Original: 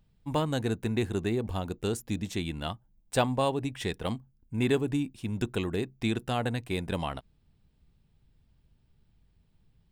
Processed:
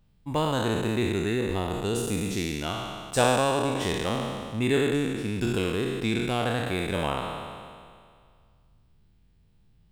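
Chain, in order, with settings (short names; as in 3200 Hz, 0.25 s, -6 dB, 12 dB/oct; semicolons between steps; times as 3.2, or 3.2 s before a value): spectral trails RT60 2.07 s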